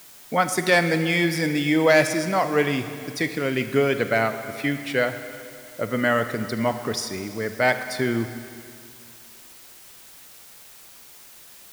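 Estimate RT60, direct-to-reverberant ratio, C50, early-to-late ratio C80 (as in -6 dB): 2.4 s, 9.0 dB, 9.5 dB, 10.5 dB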